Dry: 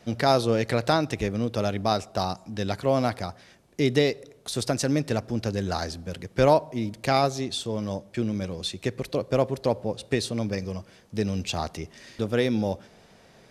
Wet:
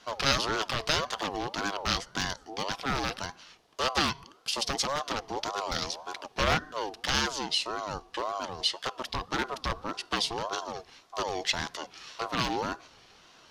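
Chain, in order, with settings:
wavefolder on the positive side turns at −19.5 dBFS
flat-topped bell 3,400 Hz +9.5 dB
ring modulator whose carrier an LFO sweeps 730 Hz, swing 25%, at 1.8 Hz
level −2.5 dB

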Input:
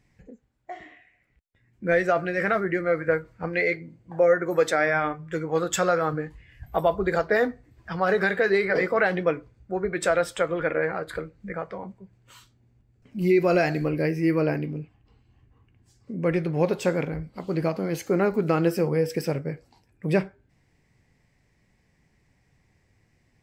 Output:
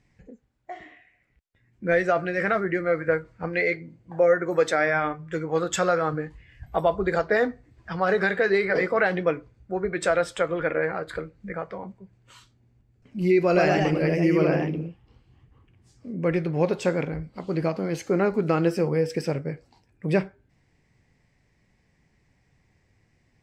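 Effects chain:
low-pass filter 8,600 Hz 12 dB per octave
0:13.45–0:16.13: delay with pitch and tempo change per echo 120 ms, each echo +1 semitone, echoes 2

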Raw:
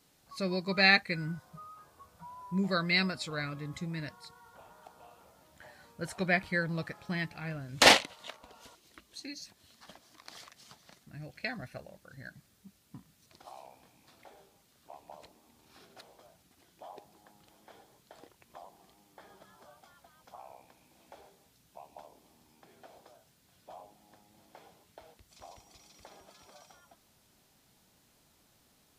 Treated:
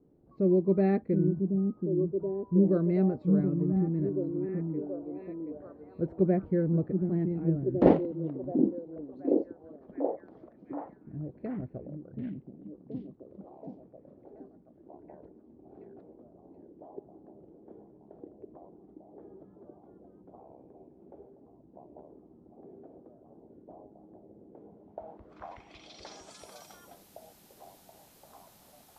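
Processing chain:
low-pass filter sweep 370 Hz → 13,000 Hz, 0:24.68–0:26.58
echo through a band-pass that steps 728 ms, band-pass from 230 Hz, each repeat 0.7 octaves, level −1 dB
level +5 dB

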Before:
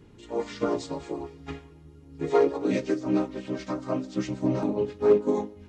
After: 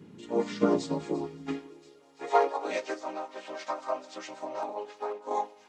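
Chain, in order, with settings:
delay with a high-pass on its return 342 ms, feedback 77%, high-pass 3,000 Hz, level −17 dB
0:02.97–0:05.31: downward compressor 6 to 1, threshold −27 dBFS, peak gain reduction 12.5 dB
high-pass filter sweep 180 Hz → 770 Hz, 0:01.36–0:02.18

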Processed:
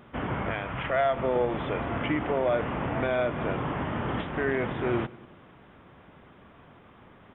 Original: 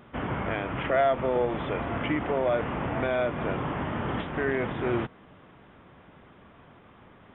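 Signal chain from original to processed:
0:00.51–0:01.16: parametric band 330 Hz −7.5 dB 1.3 octaves
repeating echo 95 ms, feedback 58%, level −21 dB

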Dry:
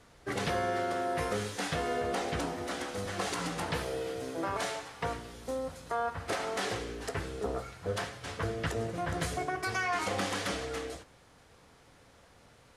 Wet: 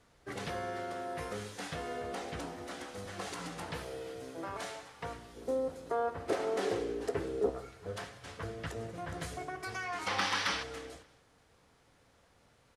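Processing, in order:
0:05.36–0:07.50: parametric band 390 Hz +13.5 dB 1.5 octaves
0:10.07–0:10.63: gain on a spectral selection 780–6,200 Hz +11 dB
repeating echo 193 ms, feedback 47%, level −22 dB
level −7 dB

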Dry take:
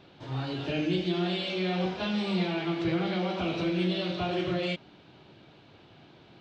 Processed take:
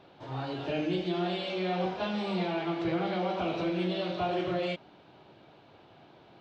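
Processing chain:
parametric band 750 Hz +8.5 dB 2 octaves
level −5.5 dB

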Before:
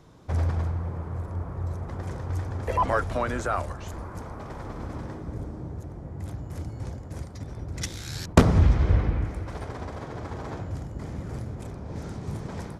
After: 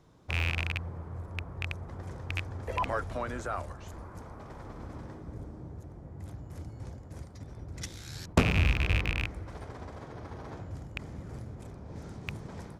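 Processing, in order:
loose part that buzzes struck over −24 dBFS, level −10 dBFS
0:10.12–0:10.52: notch filter 7,400 Hz, Q 6.1
level −7.5 dB

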